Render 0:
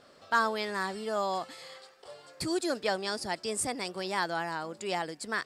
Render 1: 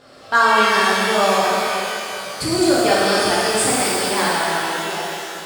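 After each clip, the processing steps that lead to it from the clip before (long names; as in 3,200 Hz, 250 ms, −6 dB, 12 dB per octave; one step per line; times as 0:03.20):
fade-out on the ending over 1.61 s
reverb with rising layers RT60 2.8 s, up +12 semitones, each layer −8 dB, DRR −7.5 dB
level +7 dB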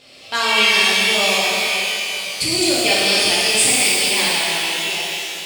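high shelf with overshoot 1,900 Hz +8.5 dB, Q 3
level −4 dB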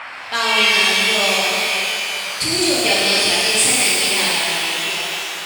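noise in a band 680–2,500 Hz −33 dBFS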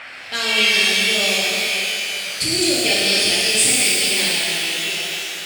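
parametric band 1,000 Hz −13.5 dB 0.83 octaves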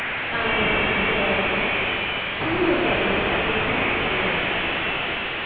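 linear delta modulator 16 kbit/s, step −20 dBFS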